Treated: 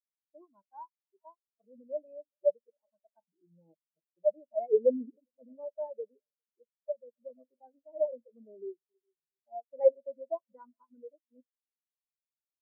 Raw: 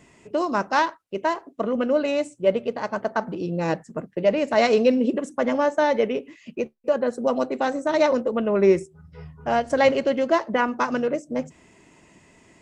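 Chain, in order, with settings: multi-head echo 0.135 s, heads second and third, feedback 49%, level -18 dB; 8.51–9.53 compressor 20:1, threshold -19 dBFS, peak gain reduction 8.5 dB; spectral expander 4:1; gain -5.5 dB

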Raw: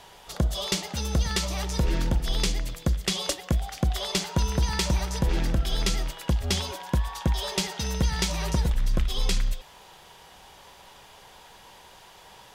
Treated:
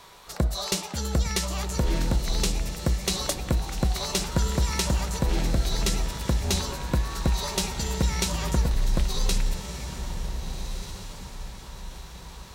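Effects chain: diffused feedback echo 1.534 s, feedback 41%, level -9 dB; formant shift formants +3 st

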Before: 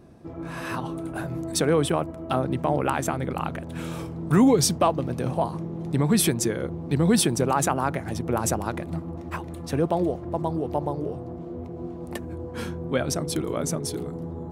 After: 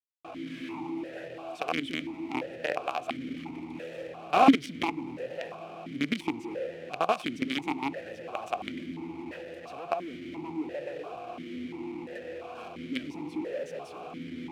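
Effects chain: companded quantiser 2-bit; vowel sequencer 2.9 Hz

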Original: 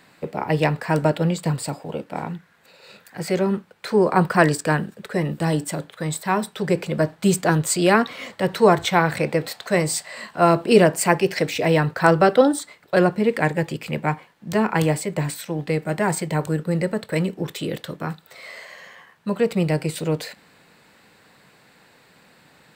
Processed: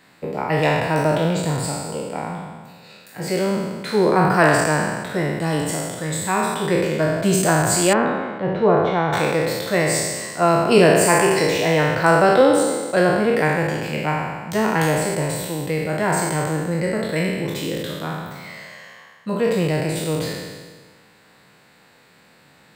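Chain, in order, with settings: spectral trails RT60 1.52 s; 7.93–9.13 tape spacing loss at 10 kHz 43 dB; gain -2 dB

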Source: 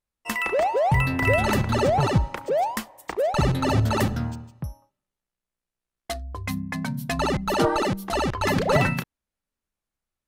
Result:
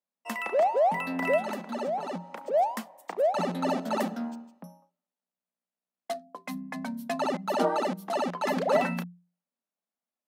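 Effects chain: 1.37–2.54 compressor 4:1, threshold -26 dBFS, peak gain reduction 10 dB; rippled Chebyshev high-pass 170 Hz, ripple 9 dB

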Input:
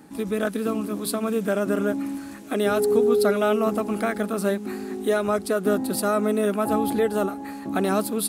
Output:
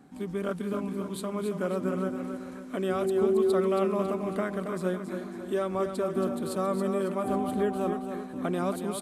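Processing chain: high shelf 4600 Hz -8.5 dB; feedback echo 0.252 s, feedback 46%, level -7.5 dB; speed mistake 48 kHz file played as 44.1 kHz; gain -6.5 dB

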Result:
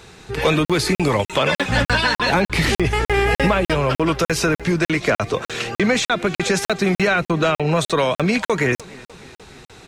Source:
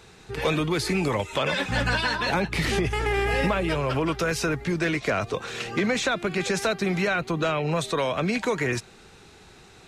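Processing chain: feedback echo 0.302 s, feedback 58%, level -23 dB; crackling interface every 0.30 s, samples 2048, zero, from 0.65; gain +7 dB

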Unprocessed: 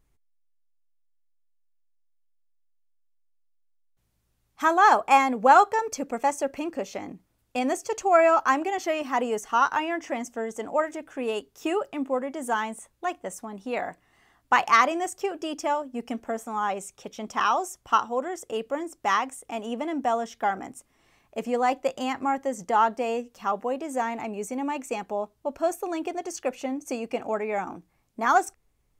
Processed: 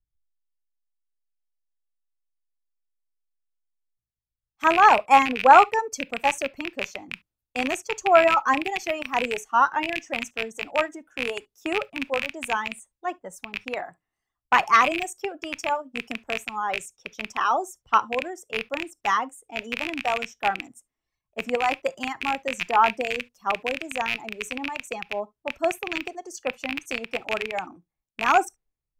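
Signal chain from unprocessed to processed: rattling part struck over -40 dBFS, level -10 dBFS; notches 50/100 Hz; in parallel at 0 dB: limiter -14.5 dBFS, peak gain reduction 10.5 dB; on the sum: reverb removal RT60 1.1 s; on a send at -19 dB: reverb, pre-delay 6 ms; on the sum: three-band expander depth 70%; gain -5 dB

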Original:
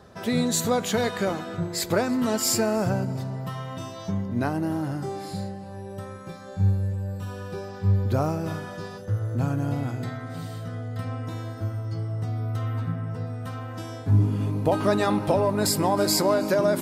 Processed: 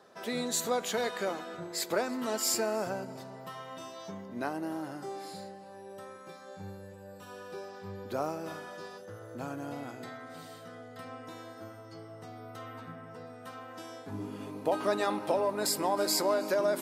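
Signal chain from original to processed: HPF 330 Hz 12 dB/oct; gain -5.5 dB

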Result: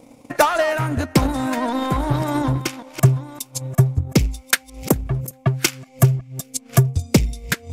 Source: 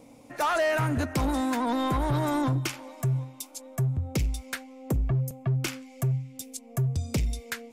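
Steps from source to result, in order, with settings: reverse delay 0.565 s, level -11 dB; 4.5–5.89 tilt +1.5 dB/oct; thinning echo 0.401 s, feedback 38%, high-pass 530 Hz, level -23 dB; transient shaper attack +12 dB, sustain -6 dB; gain +4 dB

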